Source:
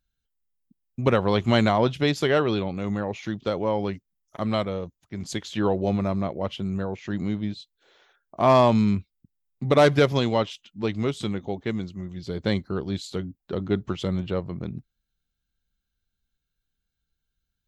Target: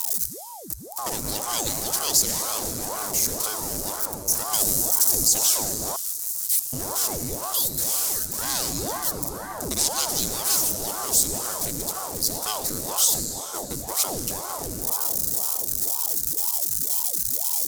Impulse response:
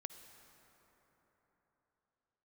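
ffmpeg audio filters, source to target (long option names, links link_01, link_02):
-filter_complex "[0:a]aeval=exprs='val(0)+0.5*0.02*sgn(val(0))':channel_layout=same,asettb=1/sr,asplit=3[link_01][link_02][link_03];[link_01]atrim=end=4.534[link_04];[link_02]atrim=start=4.53:end=5.24,asetpts=PTS-STARTPTS,afade=type=in:duration=0.004:curve=qsin,afade=type=out:start_time=0.706:duration=0.004:curve=qsin,bass=frequency=250:gain=6,treble=frequency=4000:gain=10[link_05];[link_03]atrim=start=5.236[link_06];[link_04][link_05]acrossfade=duration=0.004:curve1=hsin:curve2=qsin[link_07];[link_07][link_06]acrossfade=duration=0.004:curve1=qsin:curve2=hsin,asplit=3[link_08][link_09][link_10];[link_08]afade=type=out:start_time=13.24:duration=0.02[link_11];[link_09]agate=range=-42dB:threshold=-26dB:ratio=16:detection=peak,afade=type=in:start_time=13.24:duration=0.02,afade=type=out:start_time=13.87:duration=0.02[link_12];[link_10]afade=type=in:start_time=13.87:duration=0.02[link_13];[link_11][link_12][link_13]amix=inputs=3:normalize=0[link_14];[1:a]atrim=start_sample=2205,asetrate=29988,aresample=44100[link_15];[link_14][link_15]afir=irnorm=-1:irlink=0,acrossover=split=2900[link_16][link_17];[link_16]asoftclip=type=tanh:threshold=-25dB[link_18];[link_17]aexciter=amount=13.8:drive=7.8:freq=4900[link_19];[link_18][link_19]amix=inputs=2:normalize=0,acrossover=split=220|3000[link_20][link_21][link_22];[link_21]acompressor=threshold=-34dB:ratio=6[link_23];[link_20][link_23][link_22]amix=inputs=3:normalize=0,asettb=1/sr,asplit=3[link_24][link_25][link_26];[link_24]atrim=end=5.964[link_27];[link_25]atrim=start=5.96:end=6.73,asetpts=PTS-STARTPTS,afade=type=in:duration=0.004:curve=qsin,afade=type=out:start_time=0.766:duration=0.004:curve=qsin,aderivative[link_28];[link_26]atrim=start=6.726[link_29];[link_27][link_28]acrossfade=duration=0.004:curve1=hsin:curve2=qsin[link_30];[link_30][link_29]acrossfade=duration=0.004:curve1=qsin:curve2=hsin,alimiter=level_in=5.5dB:limit=-1dB:release=50:level=0:latency=1,aeval=exprs='val(0)*sin(2*PI*510*n/s+510*0.9/2*sin(2*PI*2*n/s))':channel_layout=same,volume=-3.5dB"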